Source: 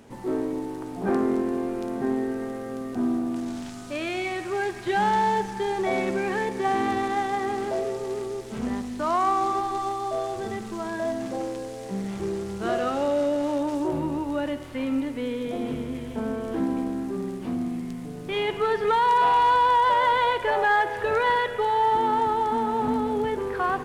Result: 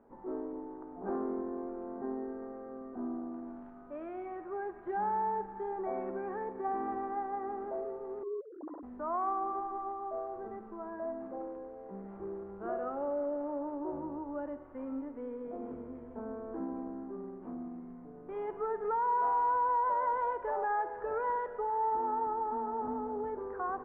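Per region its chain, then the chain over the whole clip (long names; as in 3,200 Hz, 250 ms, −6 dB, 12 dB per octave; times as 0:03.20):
0:08.23–0:08.83: three sine waves on the formant tracks + low-pass filter 1,300 Hz 24 dB per octave
whole clip: low-pass filter 1,300 Hz 24 dB per octave; parametric band 120 Hz −15 dB 1.3 octaves; level −9 dB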